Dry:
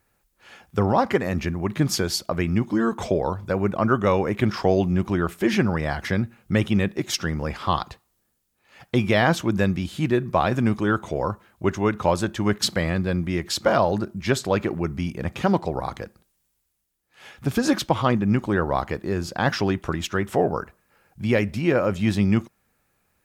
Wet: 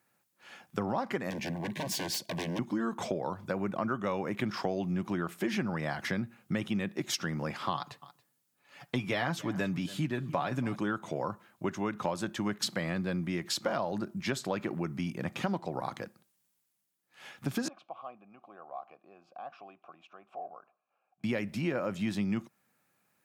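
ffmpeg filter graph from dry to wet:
-filter_complex "[0:a]asettb=1/sr,asplit=3[a][b][c];[a]atrim=end=1.304[d];[b]atrim=start=1.3:end=2.59,asetpts=PTS-STARTPTS,afade=t=in:d=0.004:c=qsin,afade=t=out:st=1.286:d=0.004:c=qsin,aeval=exprs='0.0668*(abs(mod(val(0)/0.0668+3,4)-2)-1)':c=same,asuperstop=centerf=1300:order=8:qfactor=3.7[e];[c]atrim=start=2.586[f];[d][e]acrossfade=d=0.004:c1=hsin:c2=qsin[g];[g][f]acrossfade=d=0.004:c1=qsin:c2=hsin,asettb=1/sr,asplit=3[h][i][j];[h]atrim=end=7.744[k];[i]atrim=start=7.74:end=10.76,asetpts=PTS-STARTPTS,afade=t=in:d=0.004:c=qsin,afade=t=out:st=3.016:d=0.004:c=qsin,aecho=1:1:7:0.51,atrim=end_sample=133182,aecho=1:1:280:0.0794,atrim=end_sample=133182[l];[j]atrim=start=10.756[m];[k][l]acrossfade=d=0.004:c1=hsin:c2=qsin[n];[n][m]acrossfade=d=0.004:c1=qsin:c2=hsin,asettb=1/sr,asplit=3[o][p][q];[o]atrim=end=17.684[r];[p]atrim=start=17.68:end=21.24,asetpts=PTS-STARTPTS,afade=t=in:d=0.004:c=qsin,afade=t=out:st=3.556:d=0.004:c=qsin,highshelf=f=4.7k:g=-7,acompressor=threshold=-39dB:ratio=1.5:attack=3.2:release=140:knee=1:detection=peak,asplit=3[s][t][u];[s]bandpass=f=730:t=q:w=8,volume=0dB[v];[t]bandpass=f=1.09k:t=q:w=8,volume=-6dB[w];[u]bandpass=f=2.44k:t=q:w=8,volume=-9dB[x];[v][w][x]amix=inputs=3:normalize=0[y];[q]atrim=start=21.236[z];[r][y]acrossfade=d=0.004:c1=hsin:c2=qsin[aa];[aa][z]acrossfade=d=0.004:c1=qsin:c2=hsin,highpass=f=130:w=0.5412,highpass=f=130:w=1.3066,equalizer=f=430:t=o:w=0.41:g=-4.5,acompressor=threshold=-25dB:ratio=4,volume=-4dB"

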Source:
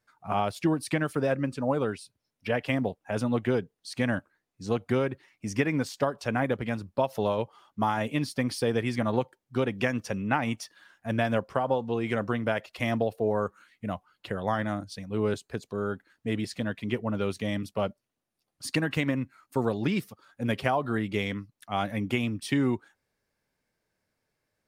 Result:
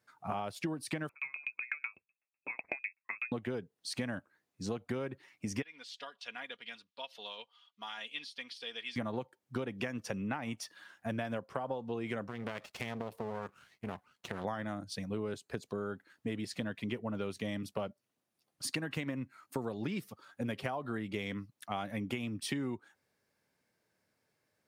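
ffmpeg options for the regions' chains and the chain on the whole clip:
-filter_complex "[0:a]asettb=1/sr,asplit=3[a][b][c];[a]atrim=end=1.094[d];[b]atrim=start=1.09:end=3.32,asetpts=PTS-STARTPTS,afade=t=in:d=0.004:c=qsin,afade=t=out:st=2.226:d=0.004:c=qsin,lowpass=f=2.3k:t=q:w=0.5098,lowpass=f=2.3k:t=q:w=0.6013,lowpass=f=2.3k:t=q:w=0.9,lowpass=f=2.3k:t=q:w=2.563,afreqshift=-2700,aeval=exprs='val(0)*pow(10,-39*if(lt(mod(8*n/s,1),2*abs(8)/1000),1-mod(8*n/s,1)/(2*abs(8)/1000),(mod(8*n/s,1)-2*abs(8)/1000)/(1-2*abs(8)/1000))/20)':c=same[e];[c]atrim=start=3.316[f];[d][e]acrossfade=d=0.004:c1=hsin:c2=qsin[g];[g][f]acrossfade=d=0.004:c1=qsin:c2=hsin,asettb=1/sr,asplit=3[h][i][j];[h]atrim=end=5.624[k];[i]atrim=start=5.62:end=8.96,asetpts=PTS-STARTPTS,afade=t=in:d=0.004:c=qsin,afade=t=out:st=3.336:d=0.004:c=qsin,deesser=0.9,bandpass=f=3.4k:t=q:w=2.8,aecho=1:1:4.2:0.47,atrim=end_sample=147294[l];[j]atrim=start=8.956[m];[k][l]acrossfade=d=0.004:c1=hsin:c2=qsin[n];[n][m]acrossfade=d=0.004:c1=qsin:c2=hsin,asettb=1/sr,asplit=3[o][p][q];[o]atrim=end=12.284[r];[p]atrim=start=12.28:end=14.45,asetpts=PTS-STARTPTS,afade=t=in:d=0.004:c=qsin,afade=t=out:st=2.166:d=0.004:c=qsin,aeval=exprs='max(val(0),0)':c=same,acompressor=threshold=-31dB:ratio=4:attack=3.2:release=140:knee=1:detection=peak,bandreject=f=310:w=5.7[s];[q]atrim=start=14.446[t];[r][s]acrossfade=d=0.004:c1=hsin:c2=qsin[u];[u][t]acrossfade=d=0.004:c1=qsin:c2=hsin,highpass=99,acompressor=threshold=-35dB:ratio=6,volume=1dB"

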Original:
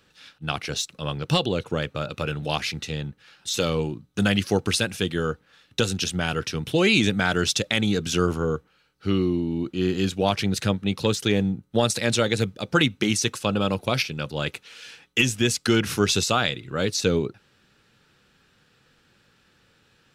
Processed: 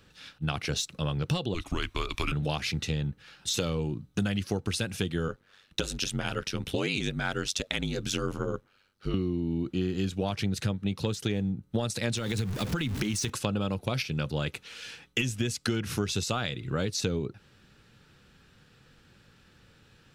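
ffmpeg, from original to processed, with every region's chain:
-filter_complex "[0:a]asettb=1/sr,asplit=3[a][b][c];[a]atrim=end=1.544[d];[b]atrim=start=1.54:end=2.32,asetpts=PTS-STARTPTS,afade=t=in:d=0.004:c=qsin,afade=t=out:st=0.776:d=0.004:c=qsin,tiltshelf=f=1.2k:g=-6.5,afreqshift=-180[e];[c]atrim=start=2.316[f];[d][e]acrossfade=d=0.004:c1=hsin:c2=qsin[g];[g][f]acrossfade=d=0.004:c1=qsin:c2=hsin,asettb=1/sr,asplit=3[h][i][j];[h]atrim=end=5.284[k];[i]atrim=start=5.28:end=9.14,asetpts=PTS-STARTPTS,afade=t=in:d=0.004:c=qsin,afade=t=out:st=3.856:d=0.004:c=qsin,lowshelf=f=240:g=-8.5,aeval=exprs='val(0)*sin(2*PI*48*n/s)':c=same[l];[j]atrim=start=9.136[m];[k][l]acrossfade=d=0.004:c1=hsin:c2=qsin[n];[n][m]acrossfade=d=0.004:c1=qsin:c2=hsin,asettb=1/sr,asplit=3[o][p][q];[o]atrim=end=12.174[r];[p]atrim=start=12.17:end=13.3,asetpts=PTS-STARTPTS,afade=t=in:d=0.004:c=qsin,afade=t=out:st=1.126:d=0.004:c=qsin,aeval=exprs='val(0)+0.5*0.0299*sgn(val(0))':c=same,equalizer=f=610:t=o:w=0.69:g=-6,acompressor=threshold=-25dB:ratio=5:attack=3.2:release=140:knee=1:detection=peak[s];[q]atrim=start=13.296[t];[r][s]acrossfade=d=0.004:c1=hsin:c2=qsin[u];[u][t]acrossfade=d=0.004:c1=qsin:c2=hsin,lowshelf=f=180:g=9,acompressor=threshold=-26dB:ratio=6"

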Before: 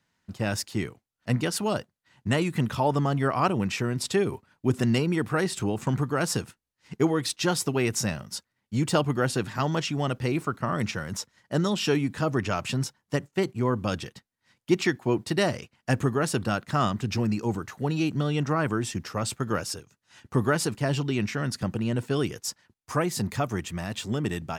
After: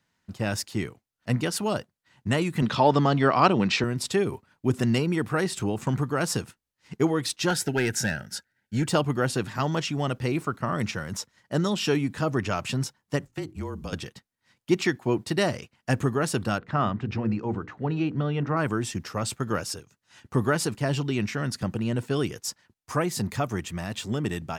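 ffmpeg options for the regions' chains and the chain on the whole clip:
-filter_complex "[0:a]asettb=1/sr,asplit=3[a][b][c];[a]atrim=end=2.624[d];[b]atrim=start=2.62:end=3.84,asetpts=PTS-STARTPTS,afade=t=in:d=0.004:c=qsin,afade=t=out:st=1.216:d=0.004:c=qsin,equalizer=f=4.1k:t=o:w=0.59:g=8,acontrast=24,highpass=150,lowpass=5.4k[e];[c]atrim=start=3.836[f];[d][e]acrossfade=d=0.004:c1=hsin:c2=qsin[g];[g][f]acrossfade=d=0.004:c1=qsin:c2=hsin,asettb=1/sr,asplit=3[h][i][j];[h]atrim=end=7.504[k];[i]atrim=start=7.5:end=8.87,asetpts=PTS-STARTPTS,afade=t=in:d=0.004:c=qsin,afade=t=out:st=1.366:d=0.004:c=qsin,equalizer=f=1.6k:w=4.3:g=14.5,asoftclip=type=hard:threshold=-18dB,asuperstop=centerf=1100:order=8:qfactor=3.3[l];[j]atrim=start=8.866[m];[k][l]acrossfade=d=0.004:c1=hsin:c2=qsin[n];[n][m]acrossfade=d=0.004:c1=qsin:c2=hsin,asettb=1/sr,asplit=3[o][p][q];[o]atrim=end=13.254[r];[p]atrim=start=13.25:end=13.93,asetpts=PTS-STARTPTS,afade=t=in:d=0.004:c=qsin,afade=t=out:st=0.676:d=0.004:c=qsin,acrossover=split=540|4000[s][t][u];[s]acompressor=threshold=-31dB:ratio=4[v];[t]acompressor=threshold=-43dB:ratio=4[w];[u]acompressor=threshold=-51dB:ratio=4[x];[v][w][x]amix=inputs=3:normalize=0,bandreject=f=50:t=h:w=6,bandreject=f=100:t=h:w=6,bandreject=f=150:t=h:w=6,bandreject=f=200:t=h:w=6,bandreject=f=250:t=h:w=6,bandreject=f=300:t=h:w=6,bandreject=f=350:t=h:w=6,bandreject=f=400:t=h:w=6,bandreject=f=450:t=h:w=6,afreqshift=-31[y];[q]atrim=start=13.926[z];[r][y]acrossfade=d=0.004:c1=hsin:c2=qsin[aa];[aa][z]acrossfade=d=0.004:c1=qsin:c2=hsin,asettb=1/sr,asplit=3[ab][ac][ad];[ab]atrim=end=16.584[ae];[ac]atrim=start=16.58:end=18.57,asetpts=PTS-STARTPTS,afade=t=in:d=0.004:c=qsin,afade=t=out:st=1.986:d=0.004:c=qsin,lowpass=2.4k,bandreject=f=60:t=h:w=6,bandreject=f=120:t=h:w=6,bandreject=f=180:t=h:w=6,bandreject=f=240:t=h:w=6,bandreject=f=300:t=h:w=6,bandreject=f=360:t=h:w=6,bandreject=f=420:t=h:w=6,bandreject=f=480:t=h:w=6[af];[ad]atrim=start=18.566[ag];[ae][af]acrossfade=d=0.004:c1=hsin:c2=qsin[ah];[ah][ag]acrossfade=d=0.004:c1=qsin:c2=hsin"

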